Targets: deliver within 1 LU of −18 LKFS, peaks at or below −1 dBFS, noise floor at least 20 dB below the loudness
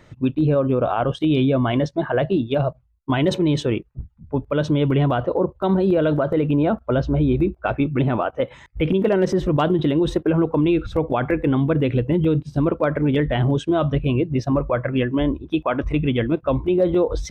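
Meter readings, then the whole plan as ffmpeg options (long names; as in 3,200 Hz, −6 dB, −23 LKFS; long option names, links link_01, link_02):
integrated loudness −20.5 LKFS; sample peak −8.5 dBFS; target loudness −18.0 LKFS
→ -af "volume=2.5dB"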